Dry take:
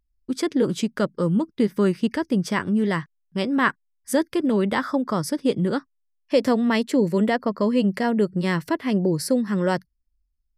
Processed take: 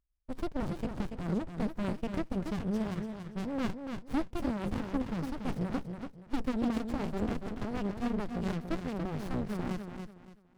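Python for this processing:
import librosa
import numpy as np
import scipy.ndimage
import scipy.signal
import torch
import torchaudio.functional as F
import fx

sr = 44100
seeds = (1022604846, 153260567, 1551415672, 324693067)

y = fx.echo_feedback(x, sr, ms=285, feedback_pct=28, wet_db=-6.5)
y = fx.running_max(y, sr, window=65)
y = y * librosa.db_to_amplitude(-8.5)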